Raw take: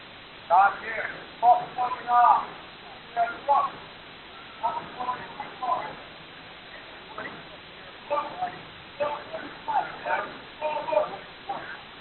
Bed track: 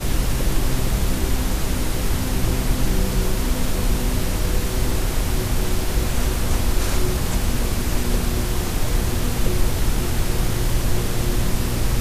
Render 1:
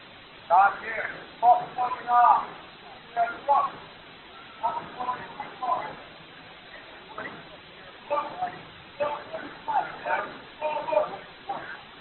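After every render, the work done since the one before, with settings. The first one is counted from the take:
broadband denoise 6 dB, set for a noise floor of −45 dBFS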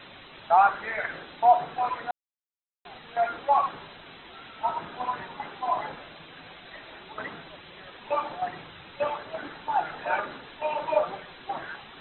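0:02.11–0:02.85: silence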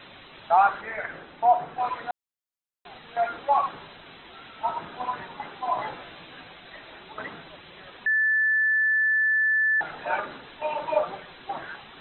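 0:00.81–0:01.80: high-frequency loss of the air 280 metres
0:05.77–0:06.44: double-tracking delay 16 ms −2.5 dB
0:08.06–0:09.81: beep over 1,750 Hz −19 dBFS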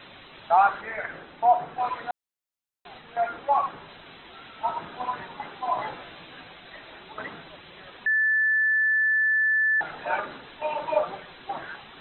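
0:03.01–0:03.88: high-frequency loss of the air 160 metres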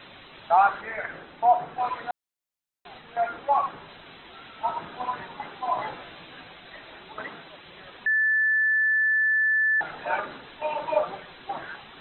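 0:07.21–0:07.66: low-shelf EQ 130 Hz −9.5 dB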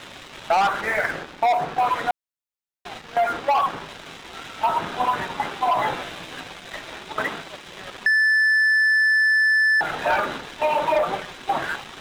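leveller curve on the samples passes 3
downward compressor, threshold −17 dBFS, peak gain reduction 6 dB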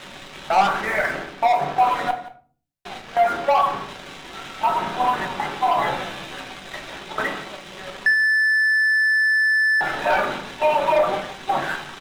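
single-tap delay 175 ms −16 dB
rectangular room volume 340 cubic metres, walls furnished, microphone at 1.1 metres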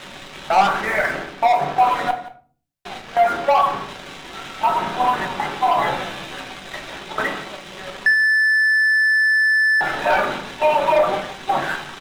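level +2 dB

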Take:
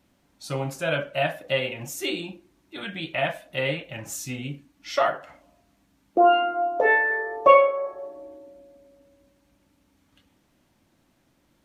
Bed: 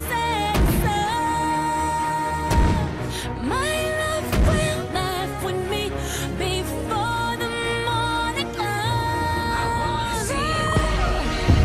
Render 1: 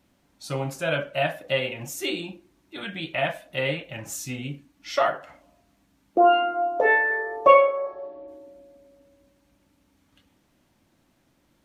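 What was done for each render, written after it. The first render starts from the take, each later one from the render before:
0:07.53–0:08.27: low-pass filter 8,100 Hz → 3,400 Hz 24 dB per octave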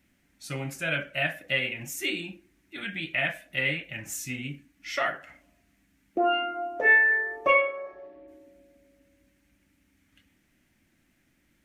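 octave-band graphic EQ 125/500/1,000/2,000/4,000 Hz −4/−7/−11/+8/−6 dB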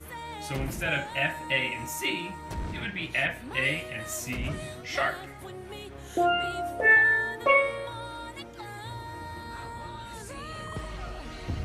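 mix in bed −16.5 dB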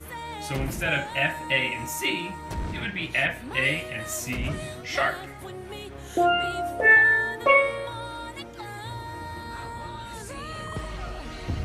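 level +3 dB

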